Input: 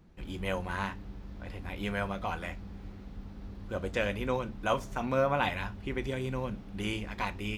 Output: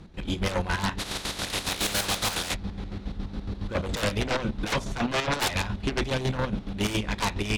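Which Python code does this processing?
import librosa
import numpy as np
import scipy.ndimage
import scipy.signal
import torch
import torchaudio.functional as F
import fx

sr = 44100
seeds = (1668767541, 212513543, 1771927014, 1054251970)

y = fx.spec_flatten(x, sr, power=0.3, at=(0.98, 2.53), fade=0.02)
y = scipy.signal.sosfilt(scipy.signal.butter(4, 11000.0, 'lowpass', fs=sr, output='sos'), y)
y = fx.peak_eq(y, sr, hz=3800.0, db=7.0, octaves=0.47)
y = fx.fold_sine(y, sr, drive_db=18, ceiling_db=-12.5)
y = fx.chopper(y, sr, hz=7.2, depth_pct=60, duty_pct=45)
y = y * 10.0 ** (-8.5 / 20.0)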